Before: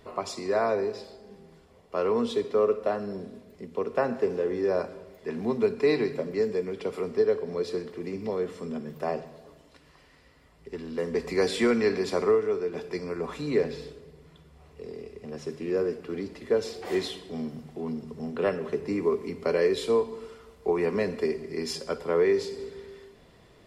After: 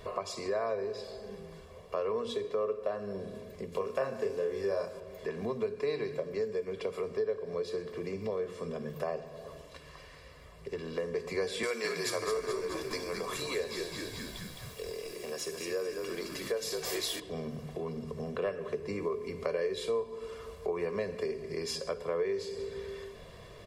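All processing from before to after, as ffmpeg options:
ffmpeg -i in.wav -filter_complex "[0:a]asettb=1/sr,asplit=3[link_01][link_02][link_03];[link_01]atrim=end=3.724[link_04];[link_02]atrim=start=3.72:end=5,asetpts=PTS-STARTPTS,afade=type=in:duration=0.004:curve=qsin,afade=type=out:start_time=1.276:duration=0.004:curve=qsin,highshelf=frequency=4700:gain=11.5,asplit=2[link_05][link_06];[link_06]adelay=30,volume=-3dB[link_07];[link_05][link_07]amix=inputs=2:normalize=0,atrim=end_sample=56448[link_08];[link_03]atrim=start=4.996[link_09];[link_04][link_08]acrossfade=duration=0.004:curve1=hsin:curve2=qsin[link_10];[link_10][link_09]acrossfade=duration=0.004:curve1=qsin:curve2=hsin,asettb=1/sr,asplit=3[link_11][link_12][link_13];[link_11]atrim=end=11.634[link_14];[link_12]atrim=start=11.63:end=17.2,asetpts=PTS-STARTPTS,afade=type=in:duration=0.004:curve=qsin,afade=type=out:start_time=5.566:duration=0.004:curve=qsin,highpass=180,aemphasis=mode=production:type=riaa,asplit=8[link_15][link_16][link_17][link_18][link_19][link_20][link_21][link_22];[link_16]adelay=213,afreqshift=-61,volume=-6dB[link_23];[link_17]adelay=426,afreqshift=-122,volume=-10.9dB[link_24];[link_18]adelay=639,afreqshift=-183,volume=-15.8dB[link_25];[link_19]adelay=852,afreqshift=-244,volume=-20.6dB[link_26];[link_20]adelay=1065,afreqshift=-305,volume=-25.5dB[link_27];[link_21]adelay=1278,afreqshift=-366,volume=-30.4dB[link_28];[link_22]adelay=1491,afreqshift=-427,volume=-35.3dB[link_29];[link_15][link_23][link_24][link_25][link_26][link_27][link_28][link_29]amix=inputs=8:normalize=0,atrim=end_sample=245637[link_30];[link_13]atrim=start=17.196[link_31];[link_14][link_30]acrossfade=duration=0.004:curve1=hsin:curve2=qsin[link_32];[link_32][link_31]acrossfade=duration=0.004:curve1=qsin:curve2=hsin,bandreject=frequency=60:width_type=h:width=6,bandreject=frequency=120:width_type=h:width=6,bandreject=frequency=180:width_type=h:width=6,bandreject=frequency=240:width_type=h:width=6,bandreject=frequency=300:width_type=h:width=6,bandreject=frequency=360:width_type=h:width=6,bandreject=frequency=420:width_type=h:width=6,aecho=1:1:1.8:0.56,acompressor=threshold=-42dB:ratio=2.5,volume=5dB" out.wav

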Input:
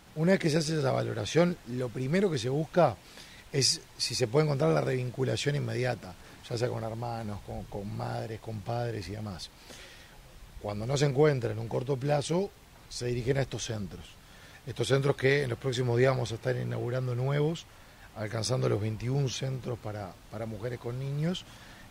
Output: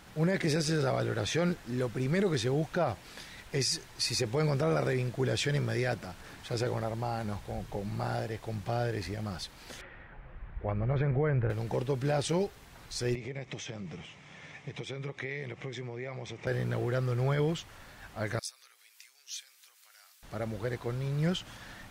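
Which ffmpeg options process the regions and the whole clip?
ffmpeg -i in.wav -filter_complex "[0:a]asettb=1/sr,asplit=3[link_01][link_02][link_03];[link_01]atrim=end=9.814[link_04];[link_02]atrim=start=9.81:end=11.5,asetpts=PTS-STARTPTS,afade=type=in:duration=0.004:curve=qsin,afade=type=out:start_time=1.686:duration=0.004:curve=qsin,lowpass=frequency=2200:width=0.5412,lowpass=frequency=2200:width=1.3066,asubboost=boost=5:cutoff=150[link_05];[link_03]atrim=start=11.496[link_06];[link_04][link_05]acrossfade=duration=0.004:curve1=hsin:curve2=qsin[link_07];[link_07][link_06]acrossfade=duration=0.004:curve1=qsin:curve2=hsin,asettb=1/sr,asplit=3[link_08][link_09][link_10];[link_08]atrim=end=13.154[link_11];[link_09]atrim=start=13.15:end=16.47,asetpts=PTS-STARTPTS,afade=type=in:duration=0.004:curve=qsin,afade=type=out:start_time=3.316:duration=0.004:curve=qsin,acompressor=threshold=-36dB:ratio=16:attack=3.2:release=140:knee=1:detection=peak,highpass=130,equalizer=frequency=150:width_type=q:width=4:gain=7,equalizer=frequency=1500:width_type=q:width=4:gain=-8,equalizer=frequency=2200:width_type=q:width=4:gain=9,equalizer=frequency=4400:width_type=q:width=4:gain=-9,lowpass=frequency=6700:width=0.5412,lowpass=frequency=6700:width=1.3066[link_12];[link_10]atrim=start=16.466[link_13];[link_11][link_12]acrossfade=duration=0.004:curve1=hsin:curve2=qsin[link_14];[link_14][link_13]acrossfade=duration=0.004:curve1=qsin:curve2=hsin,asettb=1/sr,asplit=3[link_15][link_16][link_17];[link_15]atrim=end=18.394[link_18];[link_16]atrim=start=18.39:end=20.23,asetpts=PTS-STARTPTS,afade=type=in:duration=0.004:curve=qsin,afade=type=out:start_time=1.836:duration=0.004:curve=qsin,acompressor=threshold=-32dB:ratio=6:attack=3.2:release=140:knee=1:detection=peak,highpass=1300,aderivative[link_19];[link_17]atrim=start=20.226[link_20];[link_18][link_19]acrossfade=duration=0.004:curve1=hsin:curve2=qsin[link_21];[link_21][link_20]acrossfade=duration=0.004:curve1=qsin:curve2=hsin,equalizer=frequency=1600:width=1.5:gain=3.5,alimiter=limit=-21.5dB:level=0:latency=1:release=24,volume=1dB" out.wav

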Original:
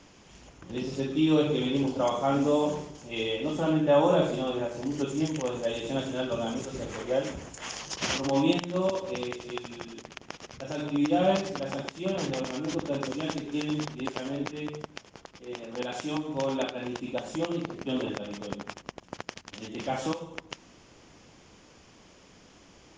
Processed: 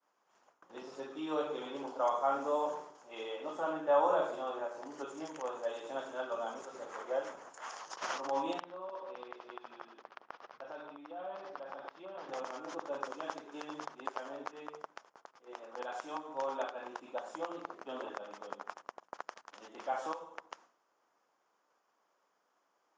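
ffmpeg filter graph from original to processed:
ffmpeg -i in.wav -filter_complex "[0:a]asettb=1/sr,asplit=3[link_01][link_02][link_03];[link_01]atrim=end=8.604[link_04];[link_02]atrim=start=8.6:end=12.29,asetpts=PTS-STARTPTS,afade=type=in:duration=0.004:curve=qsin,afade=type=out:start_time=3.686:duration=0.004:curve=qsin,lowpass=frequency=4600:width=0.5412,lowpass=frequency=4600:width=1.3066,acompressor=threshold=-33dB:ratio=6:attack=3.2:release=140:knee=1:detection=peak[link_05];[link_03]atrim=start=12.286[link_06];[link_04][link_05]acrossfade=duration=0.004:curve1=hsin:curve2=qsin[link_07];[link_07][link_06]acrossfade=duration=0.004:curve1=qsin:curve2=hsin,highpass=720,agate=range=-33dB:threshold=-49dB:ratio=3:detection=peak,highshelf=frequency=1800:width_type=q:width=1.5:gain=-10.5,volume=-2dB" out.wav

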